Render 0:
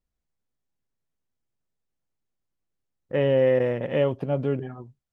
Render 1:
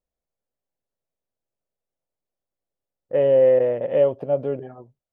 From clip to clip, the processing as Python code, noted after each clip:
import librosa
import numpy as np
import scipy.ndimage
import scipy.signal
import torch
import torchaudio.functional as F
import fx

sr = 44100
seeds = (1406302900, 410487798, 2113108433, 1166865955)

y = fx.peak_eq(x, sr, hz=580.0, db=14.0, octaves=1.2)
y = y * librosa.db_to_amplitude(-7.5)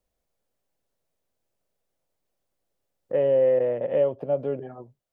y = fx.band_squash(x, sr, depth_pct=40)
y = y * librosa.db_to_amplitude(-4.0)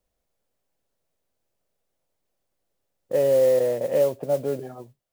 y = fx.mod_noise(x, sr, seeds[0], snr_db=23)
y = y * librosa.db_to_amplitude(1.5)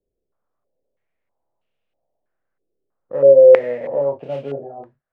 y = fx.room_early_taps(x, sr, ms=(29, 49), db=(-4.0, -9.0))
y = fx.filter_held_lowpass(y, sr, hz=3.1, low_hz=400.0, high_hz=2800.0)
y = y * librosa.db_to_amplitude(-3.5)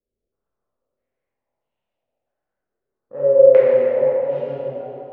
y = fx.air_absorb(x, sr, metres=98.0)
y = fx.rev_plate(y, sr, seeds[1], rt60_s=2.8, hf_ratio=0.75, predelay_ms=0, drr_db=-8.5)
y = y * librosa.db_to_amplitude(-10.0)